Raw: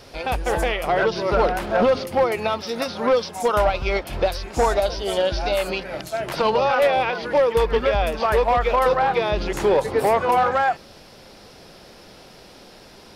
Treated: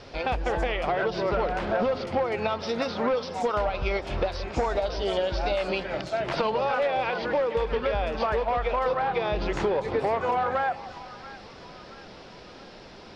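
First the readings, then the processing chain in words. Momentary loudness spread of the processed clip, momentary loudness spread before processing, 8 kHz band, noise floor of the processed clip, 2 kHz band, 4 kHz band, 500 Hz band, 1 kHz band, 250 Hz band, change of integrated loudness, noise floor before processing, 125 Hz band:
19 LU, 7 LU, under -10 dB, -46 dBFS, -5.5 dB, -6.0 dB, -6.5 dB, -6.5 dB, -4.0 dB, -6.0 dB, -46 dBFS, -4.5 dB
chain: Bessel low-pass 4.3 kHz, order 4; compression, threshold -23 dBFS, peak gain reduction 8.5 dB; on a send: two-band feedback delay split 940 Hz, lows 172 ms, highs 677 ms, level -14.5 dB

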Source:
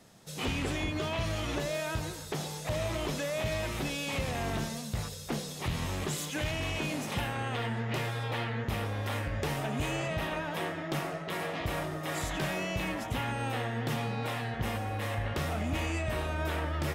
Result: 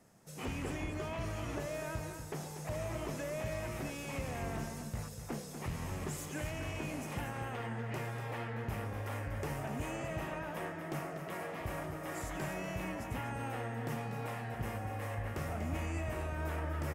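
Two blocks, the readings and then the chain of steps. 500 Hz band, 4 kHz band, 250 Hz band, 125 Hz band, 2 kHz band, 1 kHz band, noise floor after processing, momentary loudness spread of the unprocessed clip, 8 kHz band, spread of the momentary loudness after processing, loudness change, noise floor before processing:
-5.5 dB, -13.0 dB, -5.5 dB, -5.5 dB, -7.5 dB, -6.0 dB, -46 dBFS, 3 LU, -7.0 dB, 3 LU, -6.5 dB, -41 dBFS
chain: peaking EQ 3.7 kHz -11.5 dB 0.76 oct; delay 242 ms -8.5 dB; trim -6 dB

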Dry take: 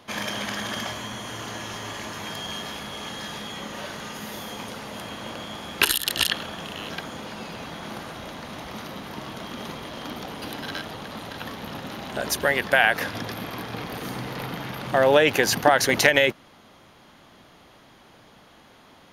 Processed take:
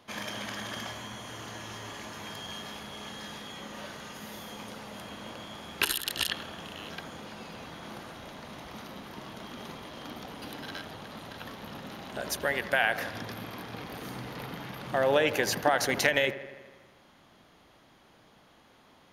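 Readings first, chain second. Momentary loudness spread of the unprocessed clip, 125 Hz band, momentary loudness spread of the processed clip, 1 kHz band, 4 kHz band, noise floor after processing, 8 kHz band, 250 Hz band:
17 LU, -7.0 dB, 17 LU, -7.0 dB, -7.5 dB, -60 dBFS, -7.5 dB, -7.0 dB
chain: feedback echo behind a low-pass 81 ms, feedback 66%, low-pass 1.9 kHz, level -13 dB; trim -7.5 dB

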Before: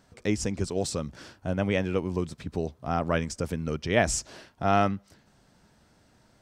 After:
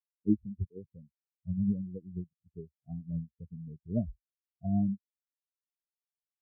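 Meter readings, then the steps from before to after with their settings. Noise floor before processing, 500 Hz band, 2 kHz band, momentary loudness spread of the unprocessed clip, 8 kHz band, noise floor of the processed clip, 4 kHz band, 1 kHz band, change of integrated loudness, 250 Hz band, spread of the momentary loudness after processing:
-63 dBFS, -18.0 dB, under -40 dB, 9 LU, under -40 dB, under -85 dBFS, under -40 dB, under -25 dB, -6.5 dB, -2.0 dB, 17 LU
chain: local Wiener filter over 41 samples; low-pass that closes with the level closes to 420 Hz, closed at -25 dBFS; spectral contrast expander 4:1

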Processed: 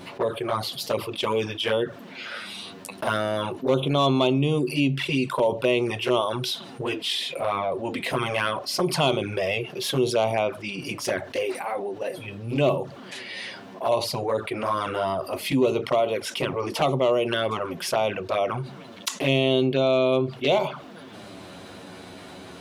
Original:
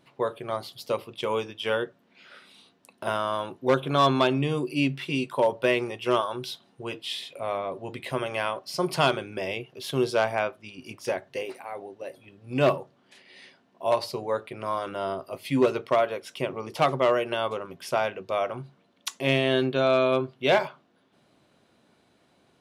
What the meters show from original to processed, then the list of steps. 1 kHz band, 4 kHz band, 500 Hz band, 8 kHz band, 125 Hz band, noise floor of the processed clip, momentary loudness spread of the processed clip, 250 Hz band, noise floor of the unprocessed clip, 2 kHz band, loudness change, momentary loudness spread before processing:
+0.5 dB, +5.0 dB, +2.0 dB, +7.0 dB, +4.5 dB, -43 dBFS, 15 LU, +3.5 dB, -65 dBFS, +1.5 dB, +2.0 dB, 13 LU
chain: touch-sensitive flanger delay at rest 11.3 ms, full sweep at -21.5 dBFS; level flattener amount 50%

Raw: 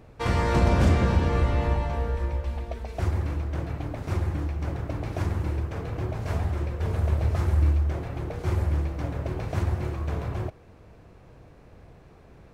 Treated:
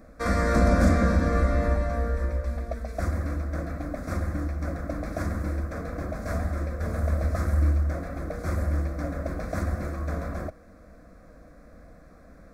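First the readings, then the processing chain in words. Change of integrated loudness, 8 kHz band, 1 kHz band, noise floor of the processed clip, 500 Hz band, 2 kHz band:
-0.5 dB, no reading, -0.5 dB, -51 dBFS, +1.5 dB, +2.5 dB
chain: static phaser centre 590 Hz, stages 8; trim +4.5 dB

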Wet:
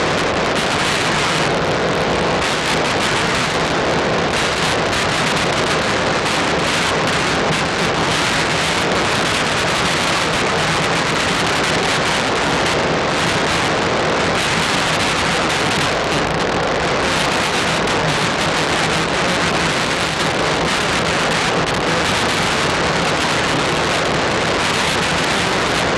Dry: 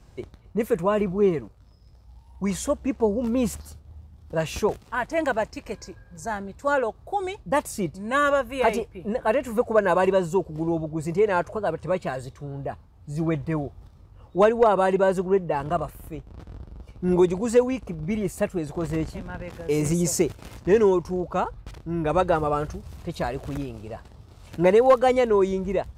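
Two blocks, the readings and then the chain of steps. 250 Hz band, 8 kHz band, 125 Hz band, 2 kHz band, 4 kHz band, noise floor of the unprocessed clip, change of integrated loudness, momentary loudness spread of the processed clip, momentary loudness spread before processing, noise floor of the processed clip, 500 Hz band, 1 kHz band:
+5.5 dB, +14.5 dB, +8.5 dB, +17.5 dB, +26.0 dB, -52 dBFS, +8.5 dB, 1 LU, 17 LU, -18 dBFS, +3.0 dB, +10.5 dB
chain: spectral levelling over time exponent 0.2; sine folder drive 20 dB, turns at 3.5 dBFS; steep low-pass 4.3 kHz 48 dB/octave; power-law waveshaper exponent 3; high-pass 62 Hz; peaking EQ 160 Hz +6.5 dB 0.26 oct; trim -8 dB

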